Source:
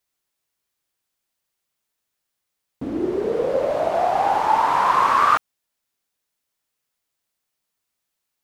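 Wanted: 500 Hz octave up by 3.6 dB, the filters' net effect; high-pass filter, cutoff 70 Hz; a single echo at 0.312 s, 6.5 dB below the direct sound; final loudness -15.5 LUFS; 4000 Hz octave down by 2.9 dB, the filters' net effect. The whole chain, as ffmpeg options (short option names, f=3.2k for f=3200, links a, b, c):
-af "highpass=70,equalizer=f=500:t=o:g=4.5,equalizer=f=4k:t=o:g=-4,aecho=1:1:312:0.473,volume=2dB"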